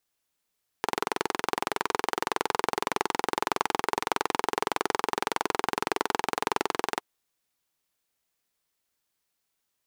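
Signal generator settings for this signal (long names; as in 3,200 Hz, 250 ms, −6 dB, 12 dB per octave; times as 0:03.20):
pulse-train model of a single-cylinder engine, steady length 6.17 s, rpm 2,600, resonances 420/860 Hz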